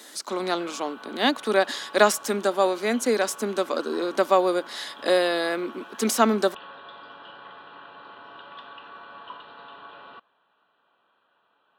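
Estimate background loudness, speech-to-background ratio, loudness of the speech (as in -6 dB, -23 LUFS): -43.5 LUFS, 19.5 dB, -24.0 LUFS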